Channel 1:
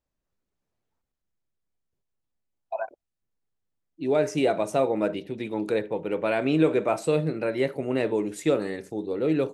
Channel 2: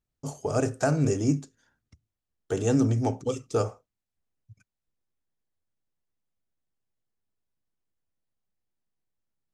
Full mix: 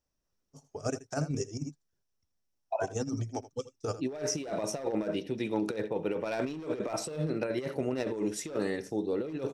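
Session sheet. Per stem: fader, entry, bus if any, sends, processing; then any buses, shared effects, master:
-3.5 dB, 0.00 s, no send, echo send -20 dB, band-stop 2.2 kHz, Q 18; hard clipper -18 dBFS, distortion -15 dB
-3.0 dB, 0.30 s, no send, echo send -16 dB, reverb removal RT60 0.7 s; upward expansion 2.5:1, over -38 dBFS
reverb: none
echo: delay 81 ms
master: peaking EQ 5.6 kHz +13.5 dB 0.23 oct; compressor with a negative ratio -31 dBFS, ratio -0.5

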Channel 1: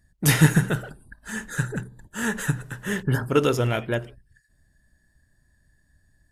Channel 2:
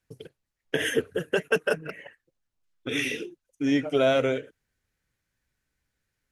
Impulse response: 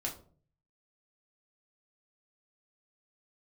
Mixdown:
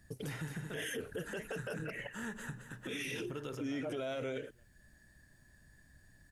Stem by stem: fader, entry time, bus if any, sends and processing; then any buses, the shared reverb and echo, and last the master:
-18.0 dB, 0.00 s, no send, echo send -9.5 dB, treble shelf 11 kHz -5.5 dB; three bands compressed up and down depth 70%
+1.0 dB, 0.00 s, no send, no echo send, treble shelf 8.7 kHz +8 dB; peak limiter -21 dBFS, peak gain reduction 11.5 dB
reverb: none
echo: feedback delay 220 ms, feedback 31%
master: peak limiter -31.5 dBFS, peak gain reduction 12.5 dB

